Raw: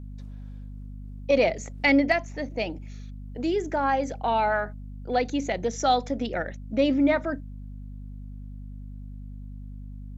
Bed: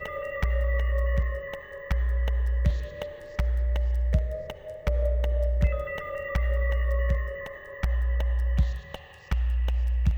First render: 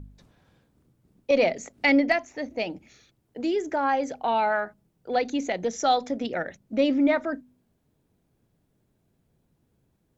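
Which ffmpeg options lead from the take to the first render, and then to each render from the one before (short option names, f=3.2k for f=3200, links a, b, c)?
-af "bandreject=f=50:t=h:w=4,bandreject=f=100:t=h:w=4,bandreject=f=150:t=h:w=4,bandreject=f=200:t=h:w=4,bandreject=f=250:t=h:w=4"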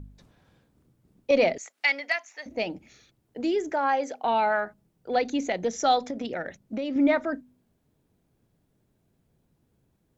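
-filter_complex "[0:a]asettb=1/sr,asplit=3[a][b][c];[a]atrim=end=1.584[d];[b]atrim=start=1.58:end=2.46,asetpts=PTS-STARTPTS,afade=t=in:d=0.004:c=qsin,afade=t=out:st=0.876:d=0.004:c=qsin,highpass=1.2k[e];[c]atrim=start=2.456[f];[d][e]acrossfade=d=0.004:c1=hsin:c2=qsin[g];[g][f]acrossfade=d=0.004:c1=qsin:c2=hsin,asettb=1/sr,asplit=3[h][i][j];[h]atrim=end=3.724[k];[i]atrim=start=3.72:end=4.24,asetpts=PTS-STARTPTS,afade=t=in:d=0.004:c=qsin,afade=t=out:st=0.516:d=0.004:c=qsin,highpass=330[l];[j]atrim=start=4.236[m];[k][l]acrossfade=d=0.004:c1=hsin:c2=qsin[n];[n][m]acrossfade=d=0.004:c1=qsin:c2=hsin,asettb=1/sr,asplit=3[o][p][q];[o]atrim=end=6.104[r];[p]atrim=start=6.1:end=6.96,asetpts=PTS-STARTPTS,afade=t=in:d=0.004:c=qsin,afade=t=out:st=0.856:d=0.004:c=qsin,acompressor=threshold=-27dB:ratio=6:attack=3.2:release=140:knee=1:detection=peak[s];[q]atrim=start=6.956[t];[r][s]acrossfade=d=0.004:c1=hsin:c2=qsin[u];[u][t]acrossfade=d=0.004:c1=qsin:c2=hsin"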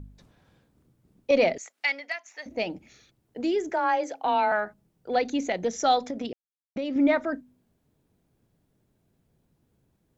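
-filter_complex "[0:a]asettb=1/sr,asplit=3[a][b][c];[a]atrim=end=3.694[d];[b]atrim=start=3.69:end=4.52,asetpts=PTS-STARTPTS,afade=t=in:d=0.004:c=qsin,afade=t=out:st=0.826:d=0.004:c=qsin,afreqshift=23[e];[c]atrim=start=4.516[f];[d][e]acrossfade=d=0.004:c1=hsin:c2=qsin[g];[g][f]acrossfade=d=0.004:c1=qsin:c2=hsin,asplit=4[h][i][j][k];[h]atrim=end=2.25,asetpts=PTS-STARTPTS,afade=t=out:st=1.57:d=0.68:silence=0.398107[l];[i]atrim=start=2.25:end=6.33,asetpts=PTS-STARTPTS,afade=t=in:d=0.004:c=hsin:silence=0.398107,afade=t=out:st=4.076:d=0.004:c=hsin[m];[j]atrim=start=6.33:end=6.76,asetpts=PTS-STARTPTS,volume=0[n];[k]atrim=start=6.76,asetpts=PTS-STARTPTS,afade=t=in:d=0.004:c=hsin[o];[l][m][n][o]concat=n=4:v=0:a=1"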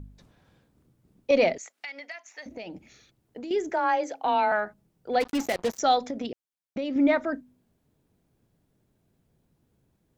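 -filter_complex "[0:a]asettb=1/sr,asplit=3[a][b][c];[a]atrim=end=1.544[d];[b]atrim=start=1.54:end=3.51,asetpts=PTS-STARTPTS,afade=t=in:d=0.004:c=qsin,afade=t=out:st=1.966:d=0.004:c=qsin,acompressor=threshold=-35dB:ratio=6:attack=3.2:release=140:knee=1:detection=peak[e];[c]atrim=start=3.506[f];[d][e]acrossfade=d=0.004:c1=hsin:c2=qsin[g];[g][f]acrossfade=d=0.004:c1=qsin:c2=hsin,asplit=3[h][i][j];[h]afade=t=out:st=5.2:d=0.02[k];[i]acrusher=bits=4:mix=0:aa=0.5,afade=t=in:st=5.2:d=0.02,afade=t=out:st=5.78:d=0.02[l];[j]afade=t=in:st=5.78:d=0.02[m];[k][l][m]amix=inputs=3:normalize=0"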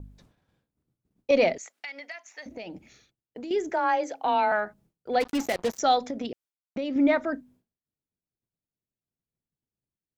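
-af "agate=range=-33dB:threshold=-53dB:ratio=3:detection=peak"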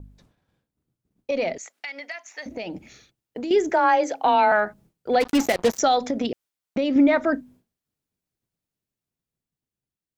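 -af "alimiter=limit=-17.5dB:level=0:latency=1:release=125,dynaudnorm=f=440:g=9:m=7.5dB"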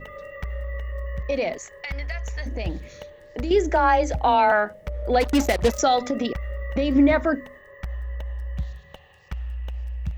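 -filter_complex "[1:a]volume=-5.5dB[a];[0:a][a]amix=inputs=2:normalize=0"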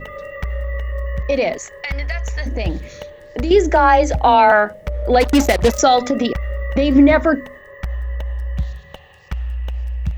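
-af "volume=7dB,alimiter=limit=-3dB:level=0:latency=1"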